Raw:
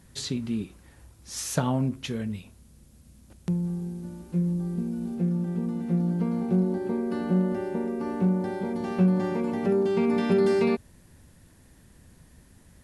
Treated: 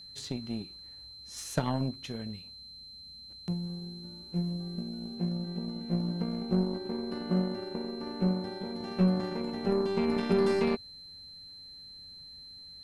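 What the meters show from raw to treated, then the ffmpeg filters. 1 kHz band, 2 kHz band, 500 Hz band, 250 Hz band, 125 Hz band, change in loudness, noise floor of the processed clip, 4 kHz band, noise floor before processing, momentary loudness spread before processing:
−4.0 dB, −4.5 dB, −5.0 dB, −5.5 dB, −5.5 dB, −5.0 dB, −49 dBFS, can't be measured, −56 dBFS, 10 LU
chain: -af "aeval=exprs='0.299*(cos(1*acos(clip(val(0)/0.299,-1,1)))-cos(1*PI/2))+0.0299*(cos(2*acos(clip(val(0)/0.299,-1,1)))-cos(2*PI/2))+0.0168*(cos(3*acos(clip(val(0)/0.299,-1,1)))-cos(3*PI/2))+0.0168*(cos(7*acos(clip(val(0)/0.299,-1,1)))-cos(7*PI/2))':channel_layout=same,acontrast=69,aeval=exprs='val(0)+0.0141*sin(2*PI*4100*n/s)':channel_layout=same,volume=-9dB"

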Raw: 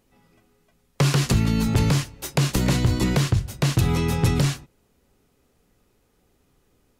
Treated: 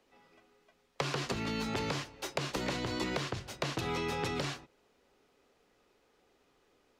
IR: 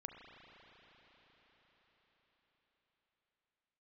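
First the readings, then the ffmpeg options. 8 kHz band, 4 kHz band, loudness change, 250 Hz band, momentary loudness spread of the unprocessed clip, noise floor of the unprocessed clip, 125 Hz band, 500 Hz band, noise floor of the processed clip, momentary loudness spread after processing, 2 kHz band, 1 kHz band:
−14.0 dB, −8.5 dB, −13.5 dB, −14.5 dB, 4 LU, −66 dBFS, −21.0 dB, −7.5 dB, −71 dBFS, 4 LU, −7.0 dB, −6.0 dB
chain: -filter_complex "[0:a]acrossover=split=310 6000:gain=0.158 1 0.178[link_01][link_02][link_03];[link_01][link_02][link_03]amix=inputs=3:normalize=0,acrossover=split=98|1200[link_04][link_05][link_06];[link_04]acompressor=threshold=-49dB:ratio=4[link_07];[link_05]acompressor=threshold=-34dB:ratio=4[link_08];[link_06]acompressor=threshold=-39dB:ratio=4[link_09];[link_07][link_08][link_09]amix=inputs=3:normalize=0"

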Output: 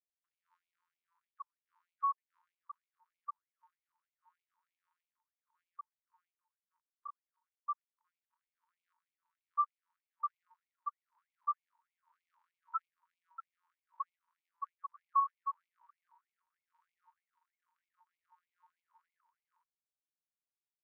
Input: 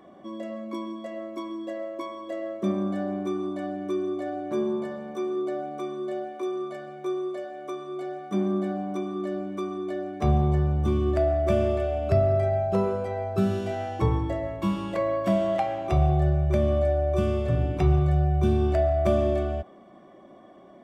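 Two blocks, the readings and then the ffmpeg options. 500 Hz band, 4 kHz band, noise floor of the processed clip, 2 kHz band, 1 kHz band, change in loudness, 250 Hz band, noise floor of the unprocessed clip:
below −40 dB, below −35 dB, below −85 dBFS, below −35 dB, −7.5 dB, −13.0 dB, below −40 dB, −50 dBFS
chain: -af "aecho=1:1:214:0.178,afftfilt=real='re*gte(hypot(re,im),0.112)':imag='im*gte(hypot(re,im),0.112)':win_size=1024:overlap=0.75,afftfilt=real='re*gte(b*sr/1024,880*pow(2200/880,0.5+0.5*sin(2*PI*3.2*pts/sr)))':imag='im*gte(b*sr/1024,880*pow(2200/880,0.5+0.5*sin(2*PI*3.2*pts/sr)))':win_size=1024:overlap=0.75,volume=12dB"

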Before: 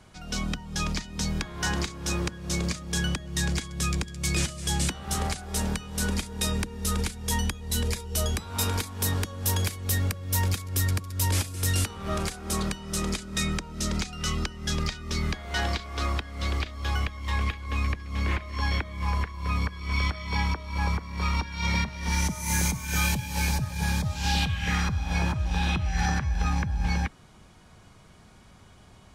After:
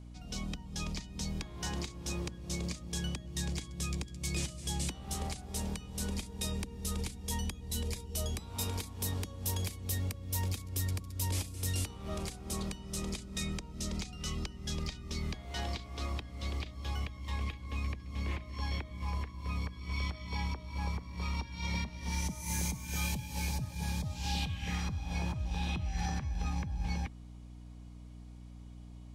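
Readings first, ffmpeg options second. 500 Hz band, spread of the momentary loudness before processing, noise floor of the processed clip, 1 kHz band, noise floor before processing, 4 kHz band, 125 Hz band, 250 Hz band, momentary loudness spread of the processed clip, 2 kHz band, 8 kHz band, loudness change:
−9.0 dB, 4 LU, −49 dBFS, −11.0 dB, −53 dBFS, −9.0 dB, −8.0 dB, −8.0 dB, 5 LU, −12.5 dB, −8.5 dB, −9.0 dB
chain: -af "aeval=exprs='val(0)+0.0112*(sin(2*PI*60*n/s)+sin(2*PI*2*60*n/s)/2+sin(2*PI*3*60*n/s)/3+sin(2*PI*4*60*n/s)/4+sin(2*PI*5*60*n/s)/5)':channel_layout=same,equalizer=frequency=1500:width_type=o:width=0.68:gain=-9,volume=-8.5dB"

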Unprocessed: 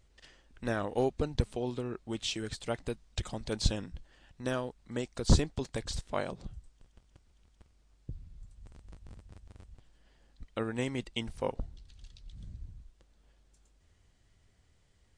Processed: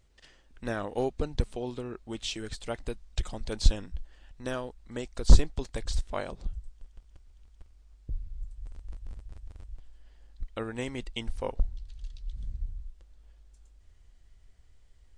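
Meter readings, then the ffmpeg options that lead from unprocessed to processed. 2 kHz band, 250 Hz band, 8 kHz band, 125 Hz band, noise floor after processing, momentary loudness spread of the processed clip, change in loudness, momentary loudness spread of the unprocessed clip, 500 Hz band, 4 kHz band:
0.0 dB, −1.5 dB, 0.0 dB, +2.5 dB, −59 dBFS, 18 LU, +1.0 dB, 21 LU, −0.5 dB, 0.0 dB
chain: -af "asubboost=boost=6:cutoff=53"

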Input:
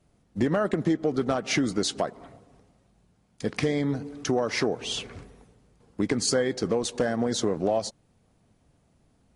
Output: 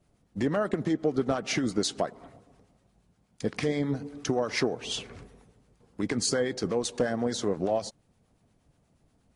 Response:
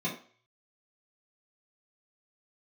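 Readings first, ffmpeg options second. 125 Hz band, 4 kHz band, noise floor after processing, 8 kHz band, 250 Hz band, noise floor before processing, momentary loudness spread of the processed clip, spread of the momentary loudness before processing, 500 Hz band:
−2.5 dB, −2.5 dB, −69 dBFS, −2.0 dB, −2.5 dB, −66 dBFS, 7 LU, 9 LU, −2.0 dB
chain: -filter_complex "[0:a]acrossover=split=950[link_01][link_02];[link_01]aeval=exprs='val(0)*(1-0.5/2+0.5/2*cos(2*PI*8.4*n/s))':channel_layout=same[link_03];[link_02]aeval=exprs='val(0)*(1-0.5/2-0.5/2*cos(2*PI*8.4*n/s))':channel_layout=same[link_04];[link_03][link_04]amix=inputs=2:normalize=0"

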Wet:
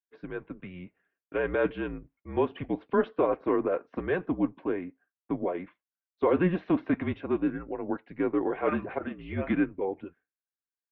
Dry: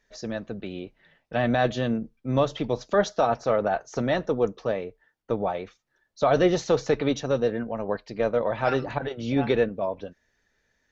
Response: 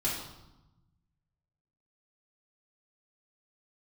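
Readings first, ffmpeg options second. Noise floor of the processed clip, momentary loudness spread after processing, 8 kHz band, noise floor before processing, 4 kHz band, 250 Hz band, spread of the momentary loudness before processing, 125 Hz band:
below −85 dBFS, 14 LU, can't be measured, −73 dBFS, below −15 dB, −0.5 dB, 12 LU, −6.5 dB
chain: -af "agate=range=-33dB:threshold=-46dB:ratio=3:detection=peak,highpass=frequency=350:width_type=q:width=0.5412,highpass=frequency=350:width_type=q:width=1.307,lowpass=frequency=2800:width_type=q:width=0.5176,lowpass=frequency=2800:width_type=q:width=0.7071,lowpass=frequency=2800:width_type=q:width=1.932,afreqshift=-180,bandreject=frequency=1300:width=18,volume=-2.5dB"

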